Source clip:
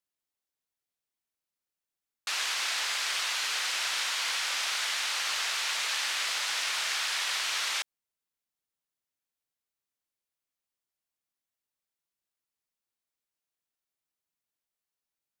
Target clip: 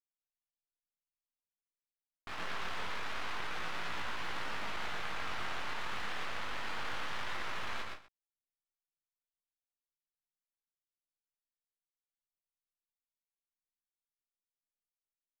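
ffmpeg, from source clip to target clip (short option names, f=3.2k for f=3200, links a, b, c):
-filter_complex "[0:a]lowpass=1.3k,anlmdn=0.158,aeval=exprs='max(val(0),0)':c=same,flanger=delay=17.5:depth=6.5:speed=0.25,asplit=2[a][b];[b]aecho=0:1:117|145|169|245:0.668|0.266|0.158|0.112[c];[a][c]amix=inputs=2:normalize=0,volume=6dB"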